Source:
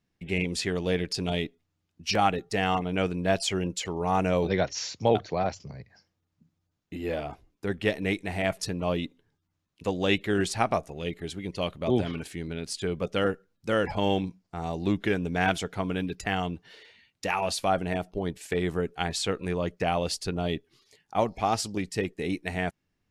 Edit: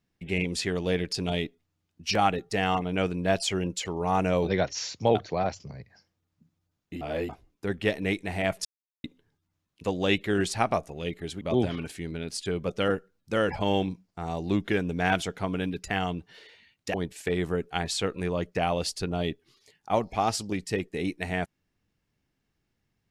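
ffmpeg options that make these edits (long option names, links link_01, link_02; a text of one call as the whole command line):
ffmpeg -i in.wav -filter_complex "[0:a]asplit=7[link_01][link_02][link_03][link_04][link_05][link_06][link_07];[link_01]atrim=end=7.012[link_08];[link_02]atrim=start=7.008:end=7.292,asetpts=PTS-STARTPTS,areverse[link_09];[link_03]atrim=start=7.288:end=8.65,asetpts=PTS-STARTPTS,afade=type=out:start_time=1.358:duration=0.004:curve=hsin[link_10];[link_04]atrim=start=8.65:end=9.04,asetpts=PTS-STARTPTS,volume=0[link_11];[link_05]atrim=start=9.04:end=11.412,asetpts=PTS-STARTPTS,afade=type=in:duration=0.004:curve=hsin[link_12];[link_06]atrim=start=11.768:end=17.302[link_13];[link_07]atrim=start=18.188[link_14];[link_08][link_09]acrossfade=duration=0.004:curve1=hsin:curve2=hsin[link_15];[link_10][link_11][link_12]concat=n=3:v=0:a=1[link_16];[link_15][link_16]acrossfade=duration=0.004:curve1=hsin:curve2=hsin[link_17];[link_17][link_13]acrossfade=duration=0.004:curve1=hsin:curve2=hsin[link_18];[link_18][link_14]acrossfade=duration=0.004:curve1=hsin:curve2=hsin" out.wav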